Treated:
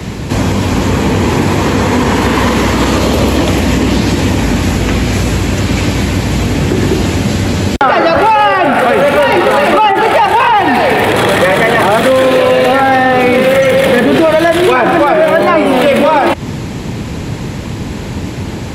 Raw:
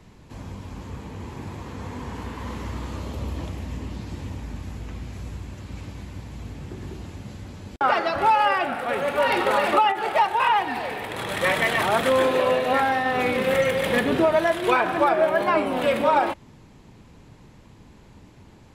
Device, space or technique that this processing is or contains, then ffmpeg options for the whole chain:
mastering chain: -filter_complex "[0:a]highpass=56,equalizer=f=1k:t=o:w=0.89:g=-4,acrossover=split=210|1400[a][b][c];[a]acompressor=threshold=-43dB:ratio=4[d];[b]acompressor=threshold=-29dB:ratio=4[e];[c]acompressor=threshold=-40dB:ratio=4[f];[d][e][f]amix=inputs=3:normalize=0,acompressor=threshold=-37dB:ratio=1.5,asoftclip=type=tanh:threshold=-24.5dB,asoftclip=type=hard:threshold=-27.5dB,alimiter=level_in=31dB:limit=-1dB:release=50:level=0:latency=1,volume=-1dB"

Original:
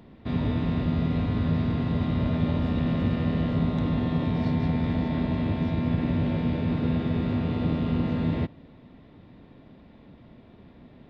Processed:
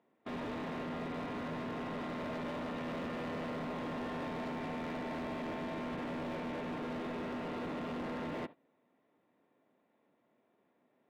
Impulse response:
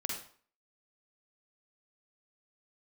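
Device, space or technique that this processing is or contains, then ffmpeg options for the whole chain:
walkie-talkie: -af "highpass=420,lowpass=2.3k,asoftclip=type=hard:threshold=-37dB,agate=range=-16dB:threshold=-48dB:ratio=16:detection=peak"

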